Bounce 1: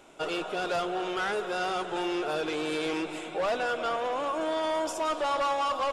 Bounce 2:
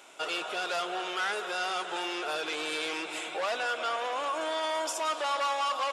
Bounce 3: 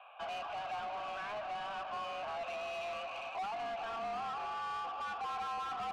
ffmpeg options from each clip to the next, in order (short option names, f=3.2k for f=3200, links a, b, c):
-filter_complex "[0:a]highpass=f=1.4k:p=1,asplit=2[a][b];[b]alimiter=level_in=8dB:limit=-24dB:level=0:latency=1:release=170,volume=-8dB,volume=1dB[c];[a][c]amix=inputs=2:normalize=0"
-filter_complex "[0:a]highpass=f=240:t=q:w=0.5412,highpass=f=240:t=q:w=1.307,lowpass=f=3.2k:t=q:w=0.5176,lowpass=f=3.2k:t=q:w=0.7071,lowpass=f=3.2k:t=q:w=1.932,afreqshift=210,asplit=3[a][b][c];[a]bandpass=f=730:t=q:w=8,volume=0dB[d];[b]bandpass=f=1.09k:t=q:w=8,volume=-6dB[e];[c]bandpass=f=2.44k:t=q:w=8,volume=-9dB[f];[d][e][f]amix=inputs=3:normalize=0,asplit=2[g][h];[h]highpass=f=720:p=1,volume=23dB,asoftclip=type=tanh:threshold=-27.5dB[i];[g][i]amix=inputs=2:normalize=0,lowpass=f=2.6k:p=1,volume=-6dB,volume=-5dB"